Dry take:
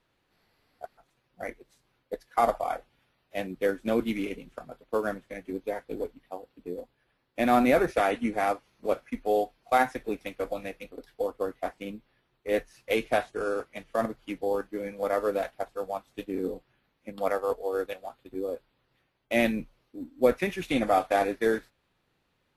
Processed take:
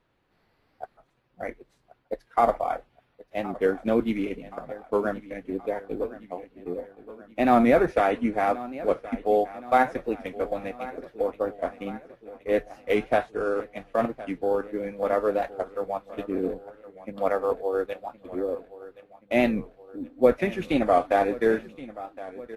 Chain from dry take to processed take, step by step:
high-shelf EQ 3,300 Hz −12 dB
repeating echo 1,072 ms, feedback 55%, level −17 dB
wow of a warped record 45 rpm, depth 100 cents
level +3.5 dB

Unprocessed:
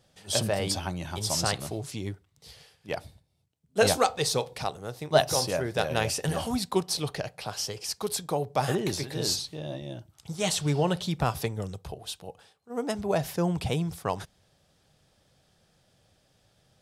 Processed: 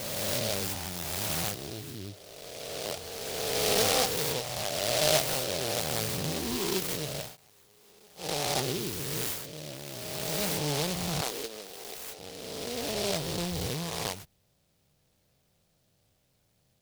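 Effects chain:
peak hold with a rise ahead of every peak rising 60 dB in 2.46 s
0:07.22–0:08.31: duck −24 dB, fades 0.15 s
0:11.21–0:12.19: high-pass filter 280 Hz 24 dB per octave
short delay modulated by noise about 3,900 Hz, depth 0.2 ms
level −8.5 dB

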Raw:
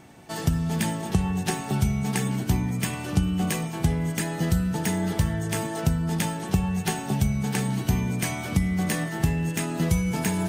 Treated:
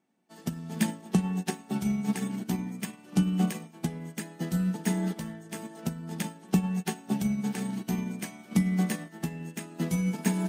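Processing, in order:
low shelf with overshoot 140 Hz −13.5 dB, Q 3
mains-hum notches 50/100/150/200/250/300 Hz
expander for the loud parts 2.5 to 1, over −36 dBFS

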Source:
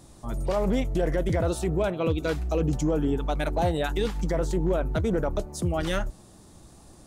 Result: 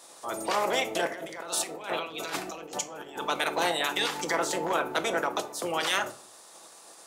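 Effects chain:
ceiling on every frequency bin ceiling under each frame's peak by 19 dB
0:01.07–0:03.26: compressor whose output falls as the input rises −31 dBFS, ratio −0.5
high-pass filter 460 Hz 12 dB per octave
rectangular room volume 500 cubic metres, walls furnished, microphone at 0.71 metres

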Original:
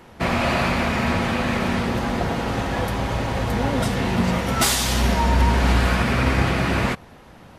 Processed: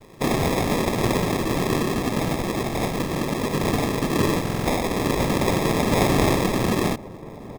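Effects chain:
0:05.91–0:06.35: high-shelf EQ 2,100 Hz +12 dB
cochlear-implant simulation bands 3
decimation without filtering 30×
slap from a distant wall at 270 metres, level −16 dB
buffer that repeats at 0:04.43, samples 2,048, times 4

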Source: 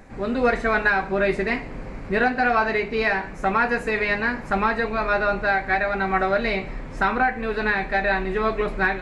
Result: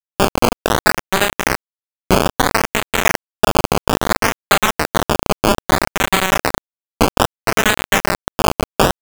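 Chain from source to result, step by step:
elliptic low-pass filter 5,500 Hz, stop band 50 dB
low-shelf EQ 210 Hz −9.5 dB
downward compressor 10 to 1, threshold −34 dBFS, peak gain reduction 18 dB
bit reduction 5 bits
double-tracking delay 33 ms −6 dB
sample-and-hold swept by an LFO 16×, swing 100% 0.61 Hz
boost into a limiter +27 dB
level −1 dB

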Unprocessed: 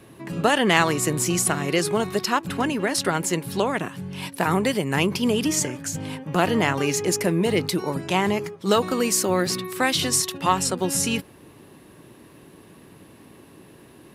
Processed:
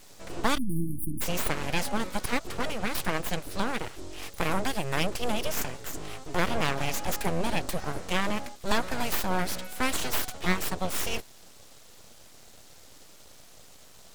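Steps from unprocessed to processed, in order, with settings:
noise in a band 3,200–8,400 Hz −50 dBFS
full-wave rectification
time-frequency box erased 0:00.57–0:01.21, 360–9,000 Hz
level −4 dB

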